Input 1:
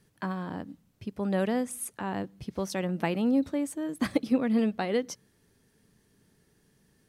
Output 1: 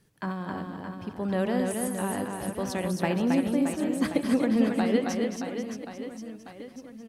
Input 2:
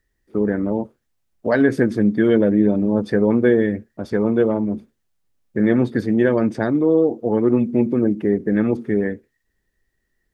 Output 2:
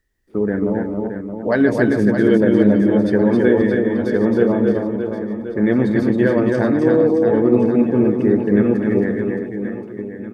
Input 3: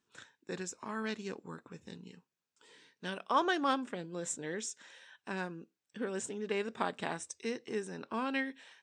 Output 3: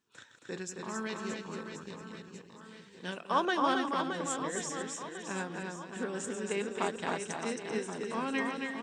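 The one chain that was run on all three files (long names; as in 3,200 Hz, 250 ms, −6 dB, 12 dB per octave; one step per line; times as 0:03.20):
delay that plays each chunk backwards 134 ms, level −8.5 dB
reverse bouncing-ball delay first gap 270 ms, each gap 1.3×, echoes 5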